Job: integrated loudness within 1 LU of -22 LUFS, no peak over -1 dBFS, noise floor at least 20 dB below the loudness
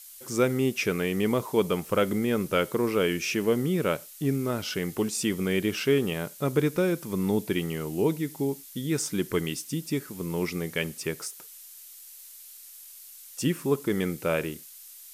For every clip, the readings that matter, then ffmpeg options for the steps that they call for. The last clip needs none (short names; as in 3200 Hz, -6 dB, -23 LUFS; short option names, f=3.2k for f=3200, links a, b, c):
noise floor -47 dBFS; noise floor target -48 dBFS; loudness -28.0 LUFS; peak -11.0 dBFS; loudness target -22.0 LUFS
-> -af "afftdn=nr=6:nf=-47"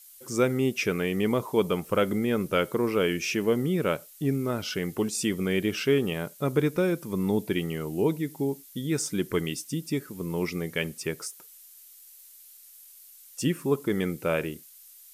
noise floor -51 dBFS; loudness -28.0 LUFS; peak -11.5 dBFS; loudness target -22.0 LUFS
-> -af "volume=6dB"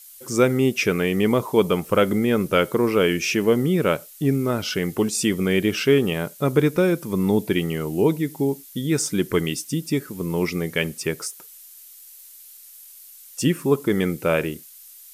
loudness -22.0 LUFS; peak -5.5 dBFS; noise floor -45 dBFS